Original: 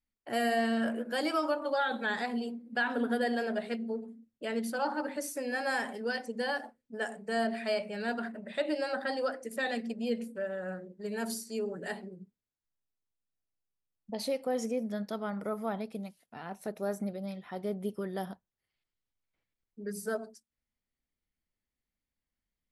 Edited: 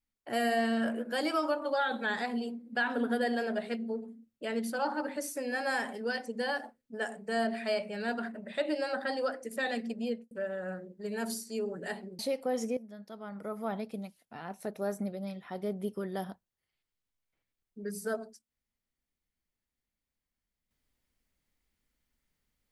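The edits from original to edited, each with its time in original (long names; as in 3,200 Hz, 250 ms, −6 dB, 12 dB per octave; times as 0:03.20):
0:10.02–0:10.31: fade out and dull
0:12.19–0:14.20: remove
0:14.78–0:15.74: fade in quadratic, from −13 dB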